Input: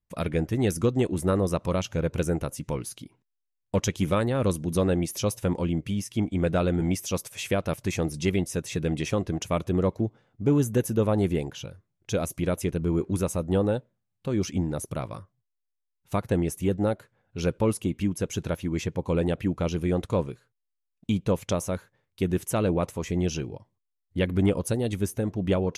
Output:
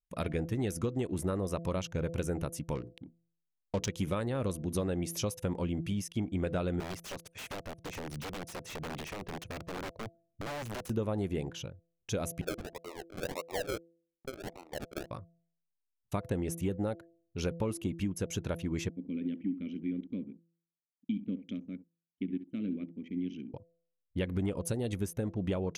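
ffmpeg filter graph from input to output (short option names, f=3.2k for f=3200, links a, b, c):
-filter_complex "[0:a]asettb=1/sr,asplit=3[a][b][c];[a]atrim=end=2.754[d];[b]atrim=start=2.75:end=3.89,asetpts=PTS-STARTPTS,afade=t=in:d=0.004:c=qsin,afade=t=out:st=1.136:d=0.004:c=qsin,adynamicsmooth=sensitivity=6:basefreq=650,equalizer=f=5.8k:t=o:w=1.5:g=5,bandreject=f=60:t=h:w=6,bandreject=f=120:t=h:w=6,bandreject=f=180:t=h:w=6,bandreject=f=240:t=h:w=6,bandreject=f=300:t=h:w=6,bandreject=f=360:t=h:w=6,bandreject=f=420:t=h:w=6[e];[c]atrim=start=3.886[f];[d][e]acrossfade=d=0.004:c1=hsin:c2=qsin[g];[g][f]acrossfade=d=0.004:c1=qsin:c2=hsin,asettb=1/sr,asplit=3[h][i][j];[h]atrim=end=6.804[k];[i]atrim=start=6.8:end=10.9,asetpts=PTS-STARTPTS,afade=t=in:d=0.004:c=qsin,afade=t=out:st=4.096:d=0.004:c=qsin,acompressor=threshold=-30dB:ratio=6:attack=3.2:release=140:knee=1:detection=peak,aeval=exprs='(mod(29.9*val(0)+1,2)-1)/29.9':c=same,highshelf=f=5.7k:g=-10.5[l];[j]atrim=start=10.896[m];[k][l]acrossfade=d=0.004:c1=hsin:c2=qsin[n];[n][m]acrossfade=d=0.004:c1=qsin:c2=hsin,asettb=1/sr,asplit=3[o][p][q];[o]atrim=end=12.414[r];[p]atrim=start=12.41:end=15.11,asetpts=PTS-STARTPTS,afade=t=in:d=0.004:c=qsin,afade=t=out:st=2.696:d=0.004:c=qsin,highpass=f=550:w=0.5412,highpass=f=550:w=1.3066,acrusher=samples=37:mix=1:aa=0.000001:lfo=1:lforange=22.2:lforate=1.7[s];[q]atrim=start=15.106[t];[r][s]acrossfade=d=0.004:c1=hsin:c2=qsin[u];[u][t]acrossfade=d=0.004:c1=qsin:c2=hsin,asettb=1/sr,asplit=3[v][w][x];[v]atrim=end=18.894[y];[w]atrim=start=18.89:end=23.54,asetpts=PTS-STARTPTS,afade=t=in:d=0.004:c=qsin,afade=t=out:st=4.646:d=0.004:c=qsin,asplit=3[z][aa][ab];[z]bandpass=f=270:t=q:w=8,volume=0dB[ac];[aa]bandpass=f=2.29k:t=q:w=8,volume=-6dB[ad];[ab]bandpass=f=3.01k:t=q:w=8,volume=-9dB[ae];[ac][ad][ae]amix=inputs=3:normalize=0,equalizer=f=210:t=o:w=0.61:g=11,aecho=1:1:66|132|198:0.224|0.0537|0.0129,atrim=end_sample=205065[af];[x]atrim=start=23.536[ag];[y][af]acrossfade=d=0.004:c1=hsin:c2=qsin[ah];[ah][ag]acrossfade=d=0.004:c1=qsin:c2=hsin,anlmdn=0.0251,bandreject=f=167.9:t=h:w=4,bandreject=f=335.8:t=h:w=4,bandreject=f=503.7:t=h:w=4,bandreject=f=671.6:t=h:w=4,acompressor=threshold=-25dB:ratio=6,volume=-3.5dB"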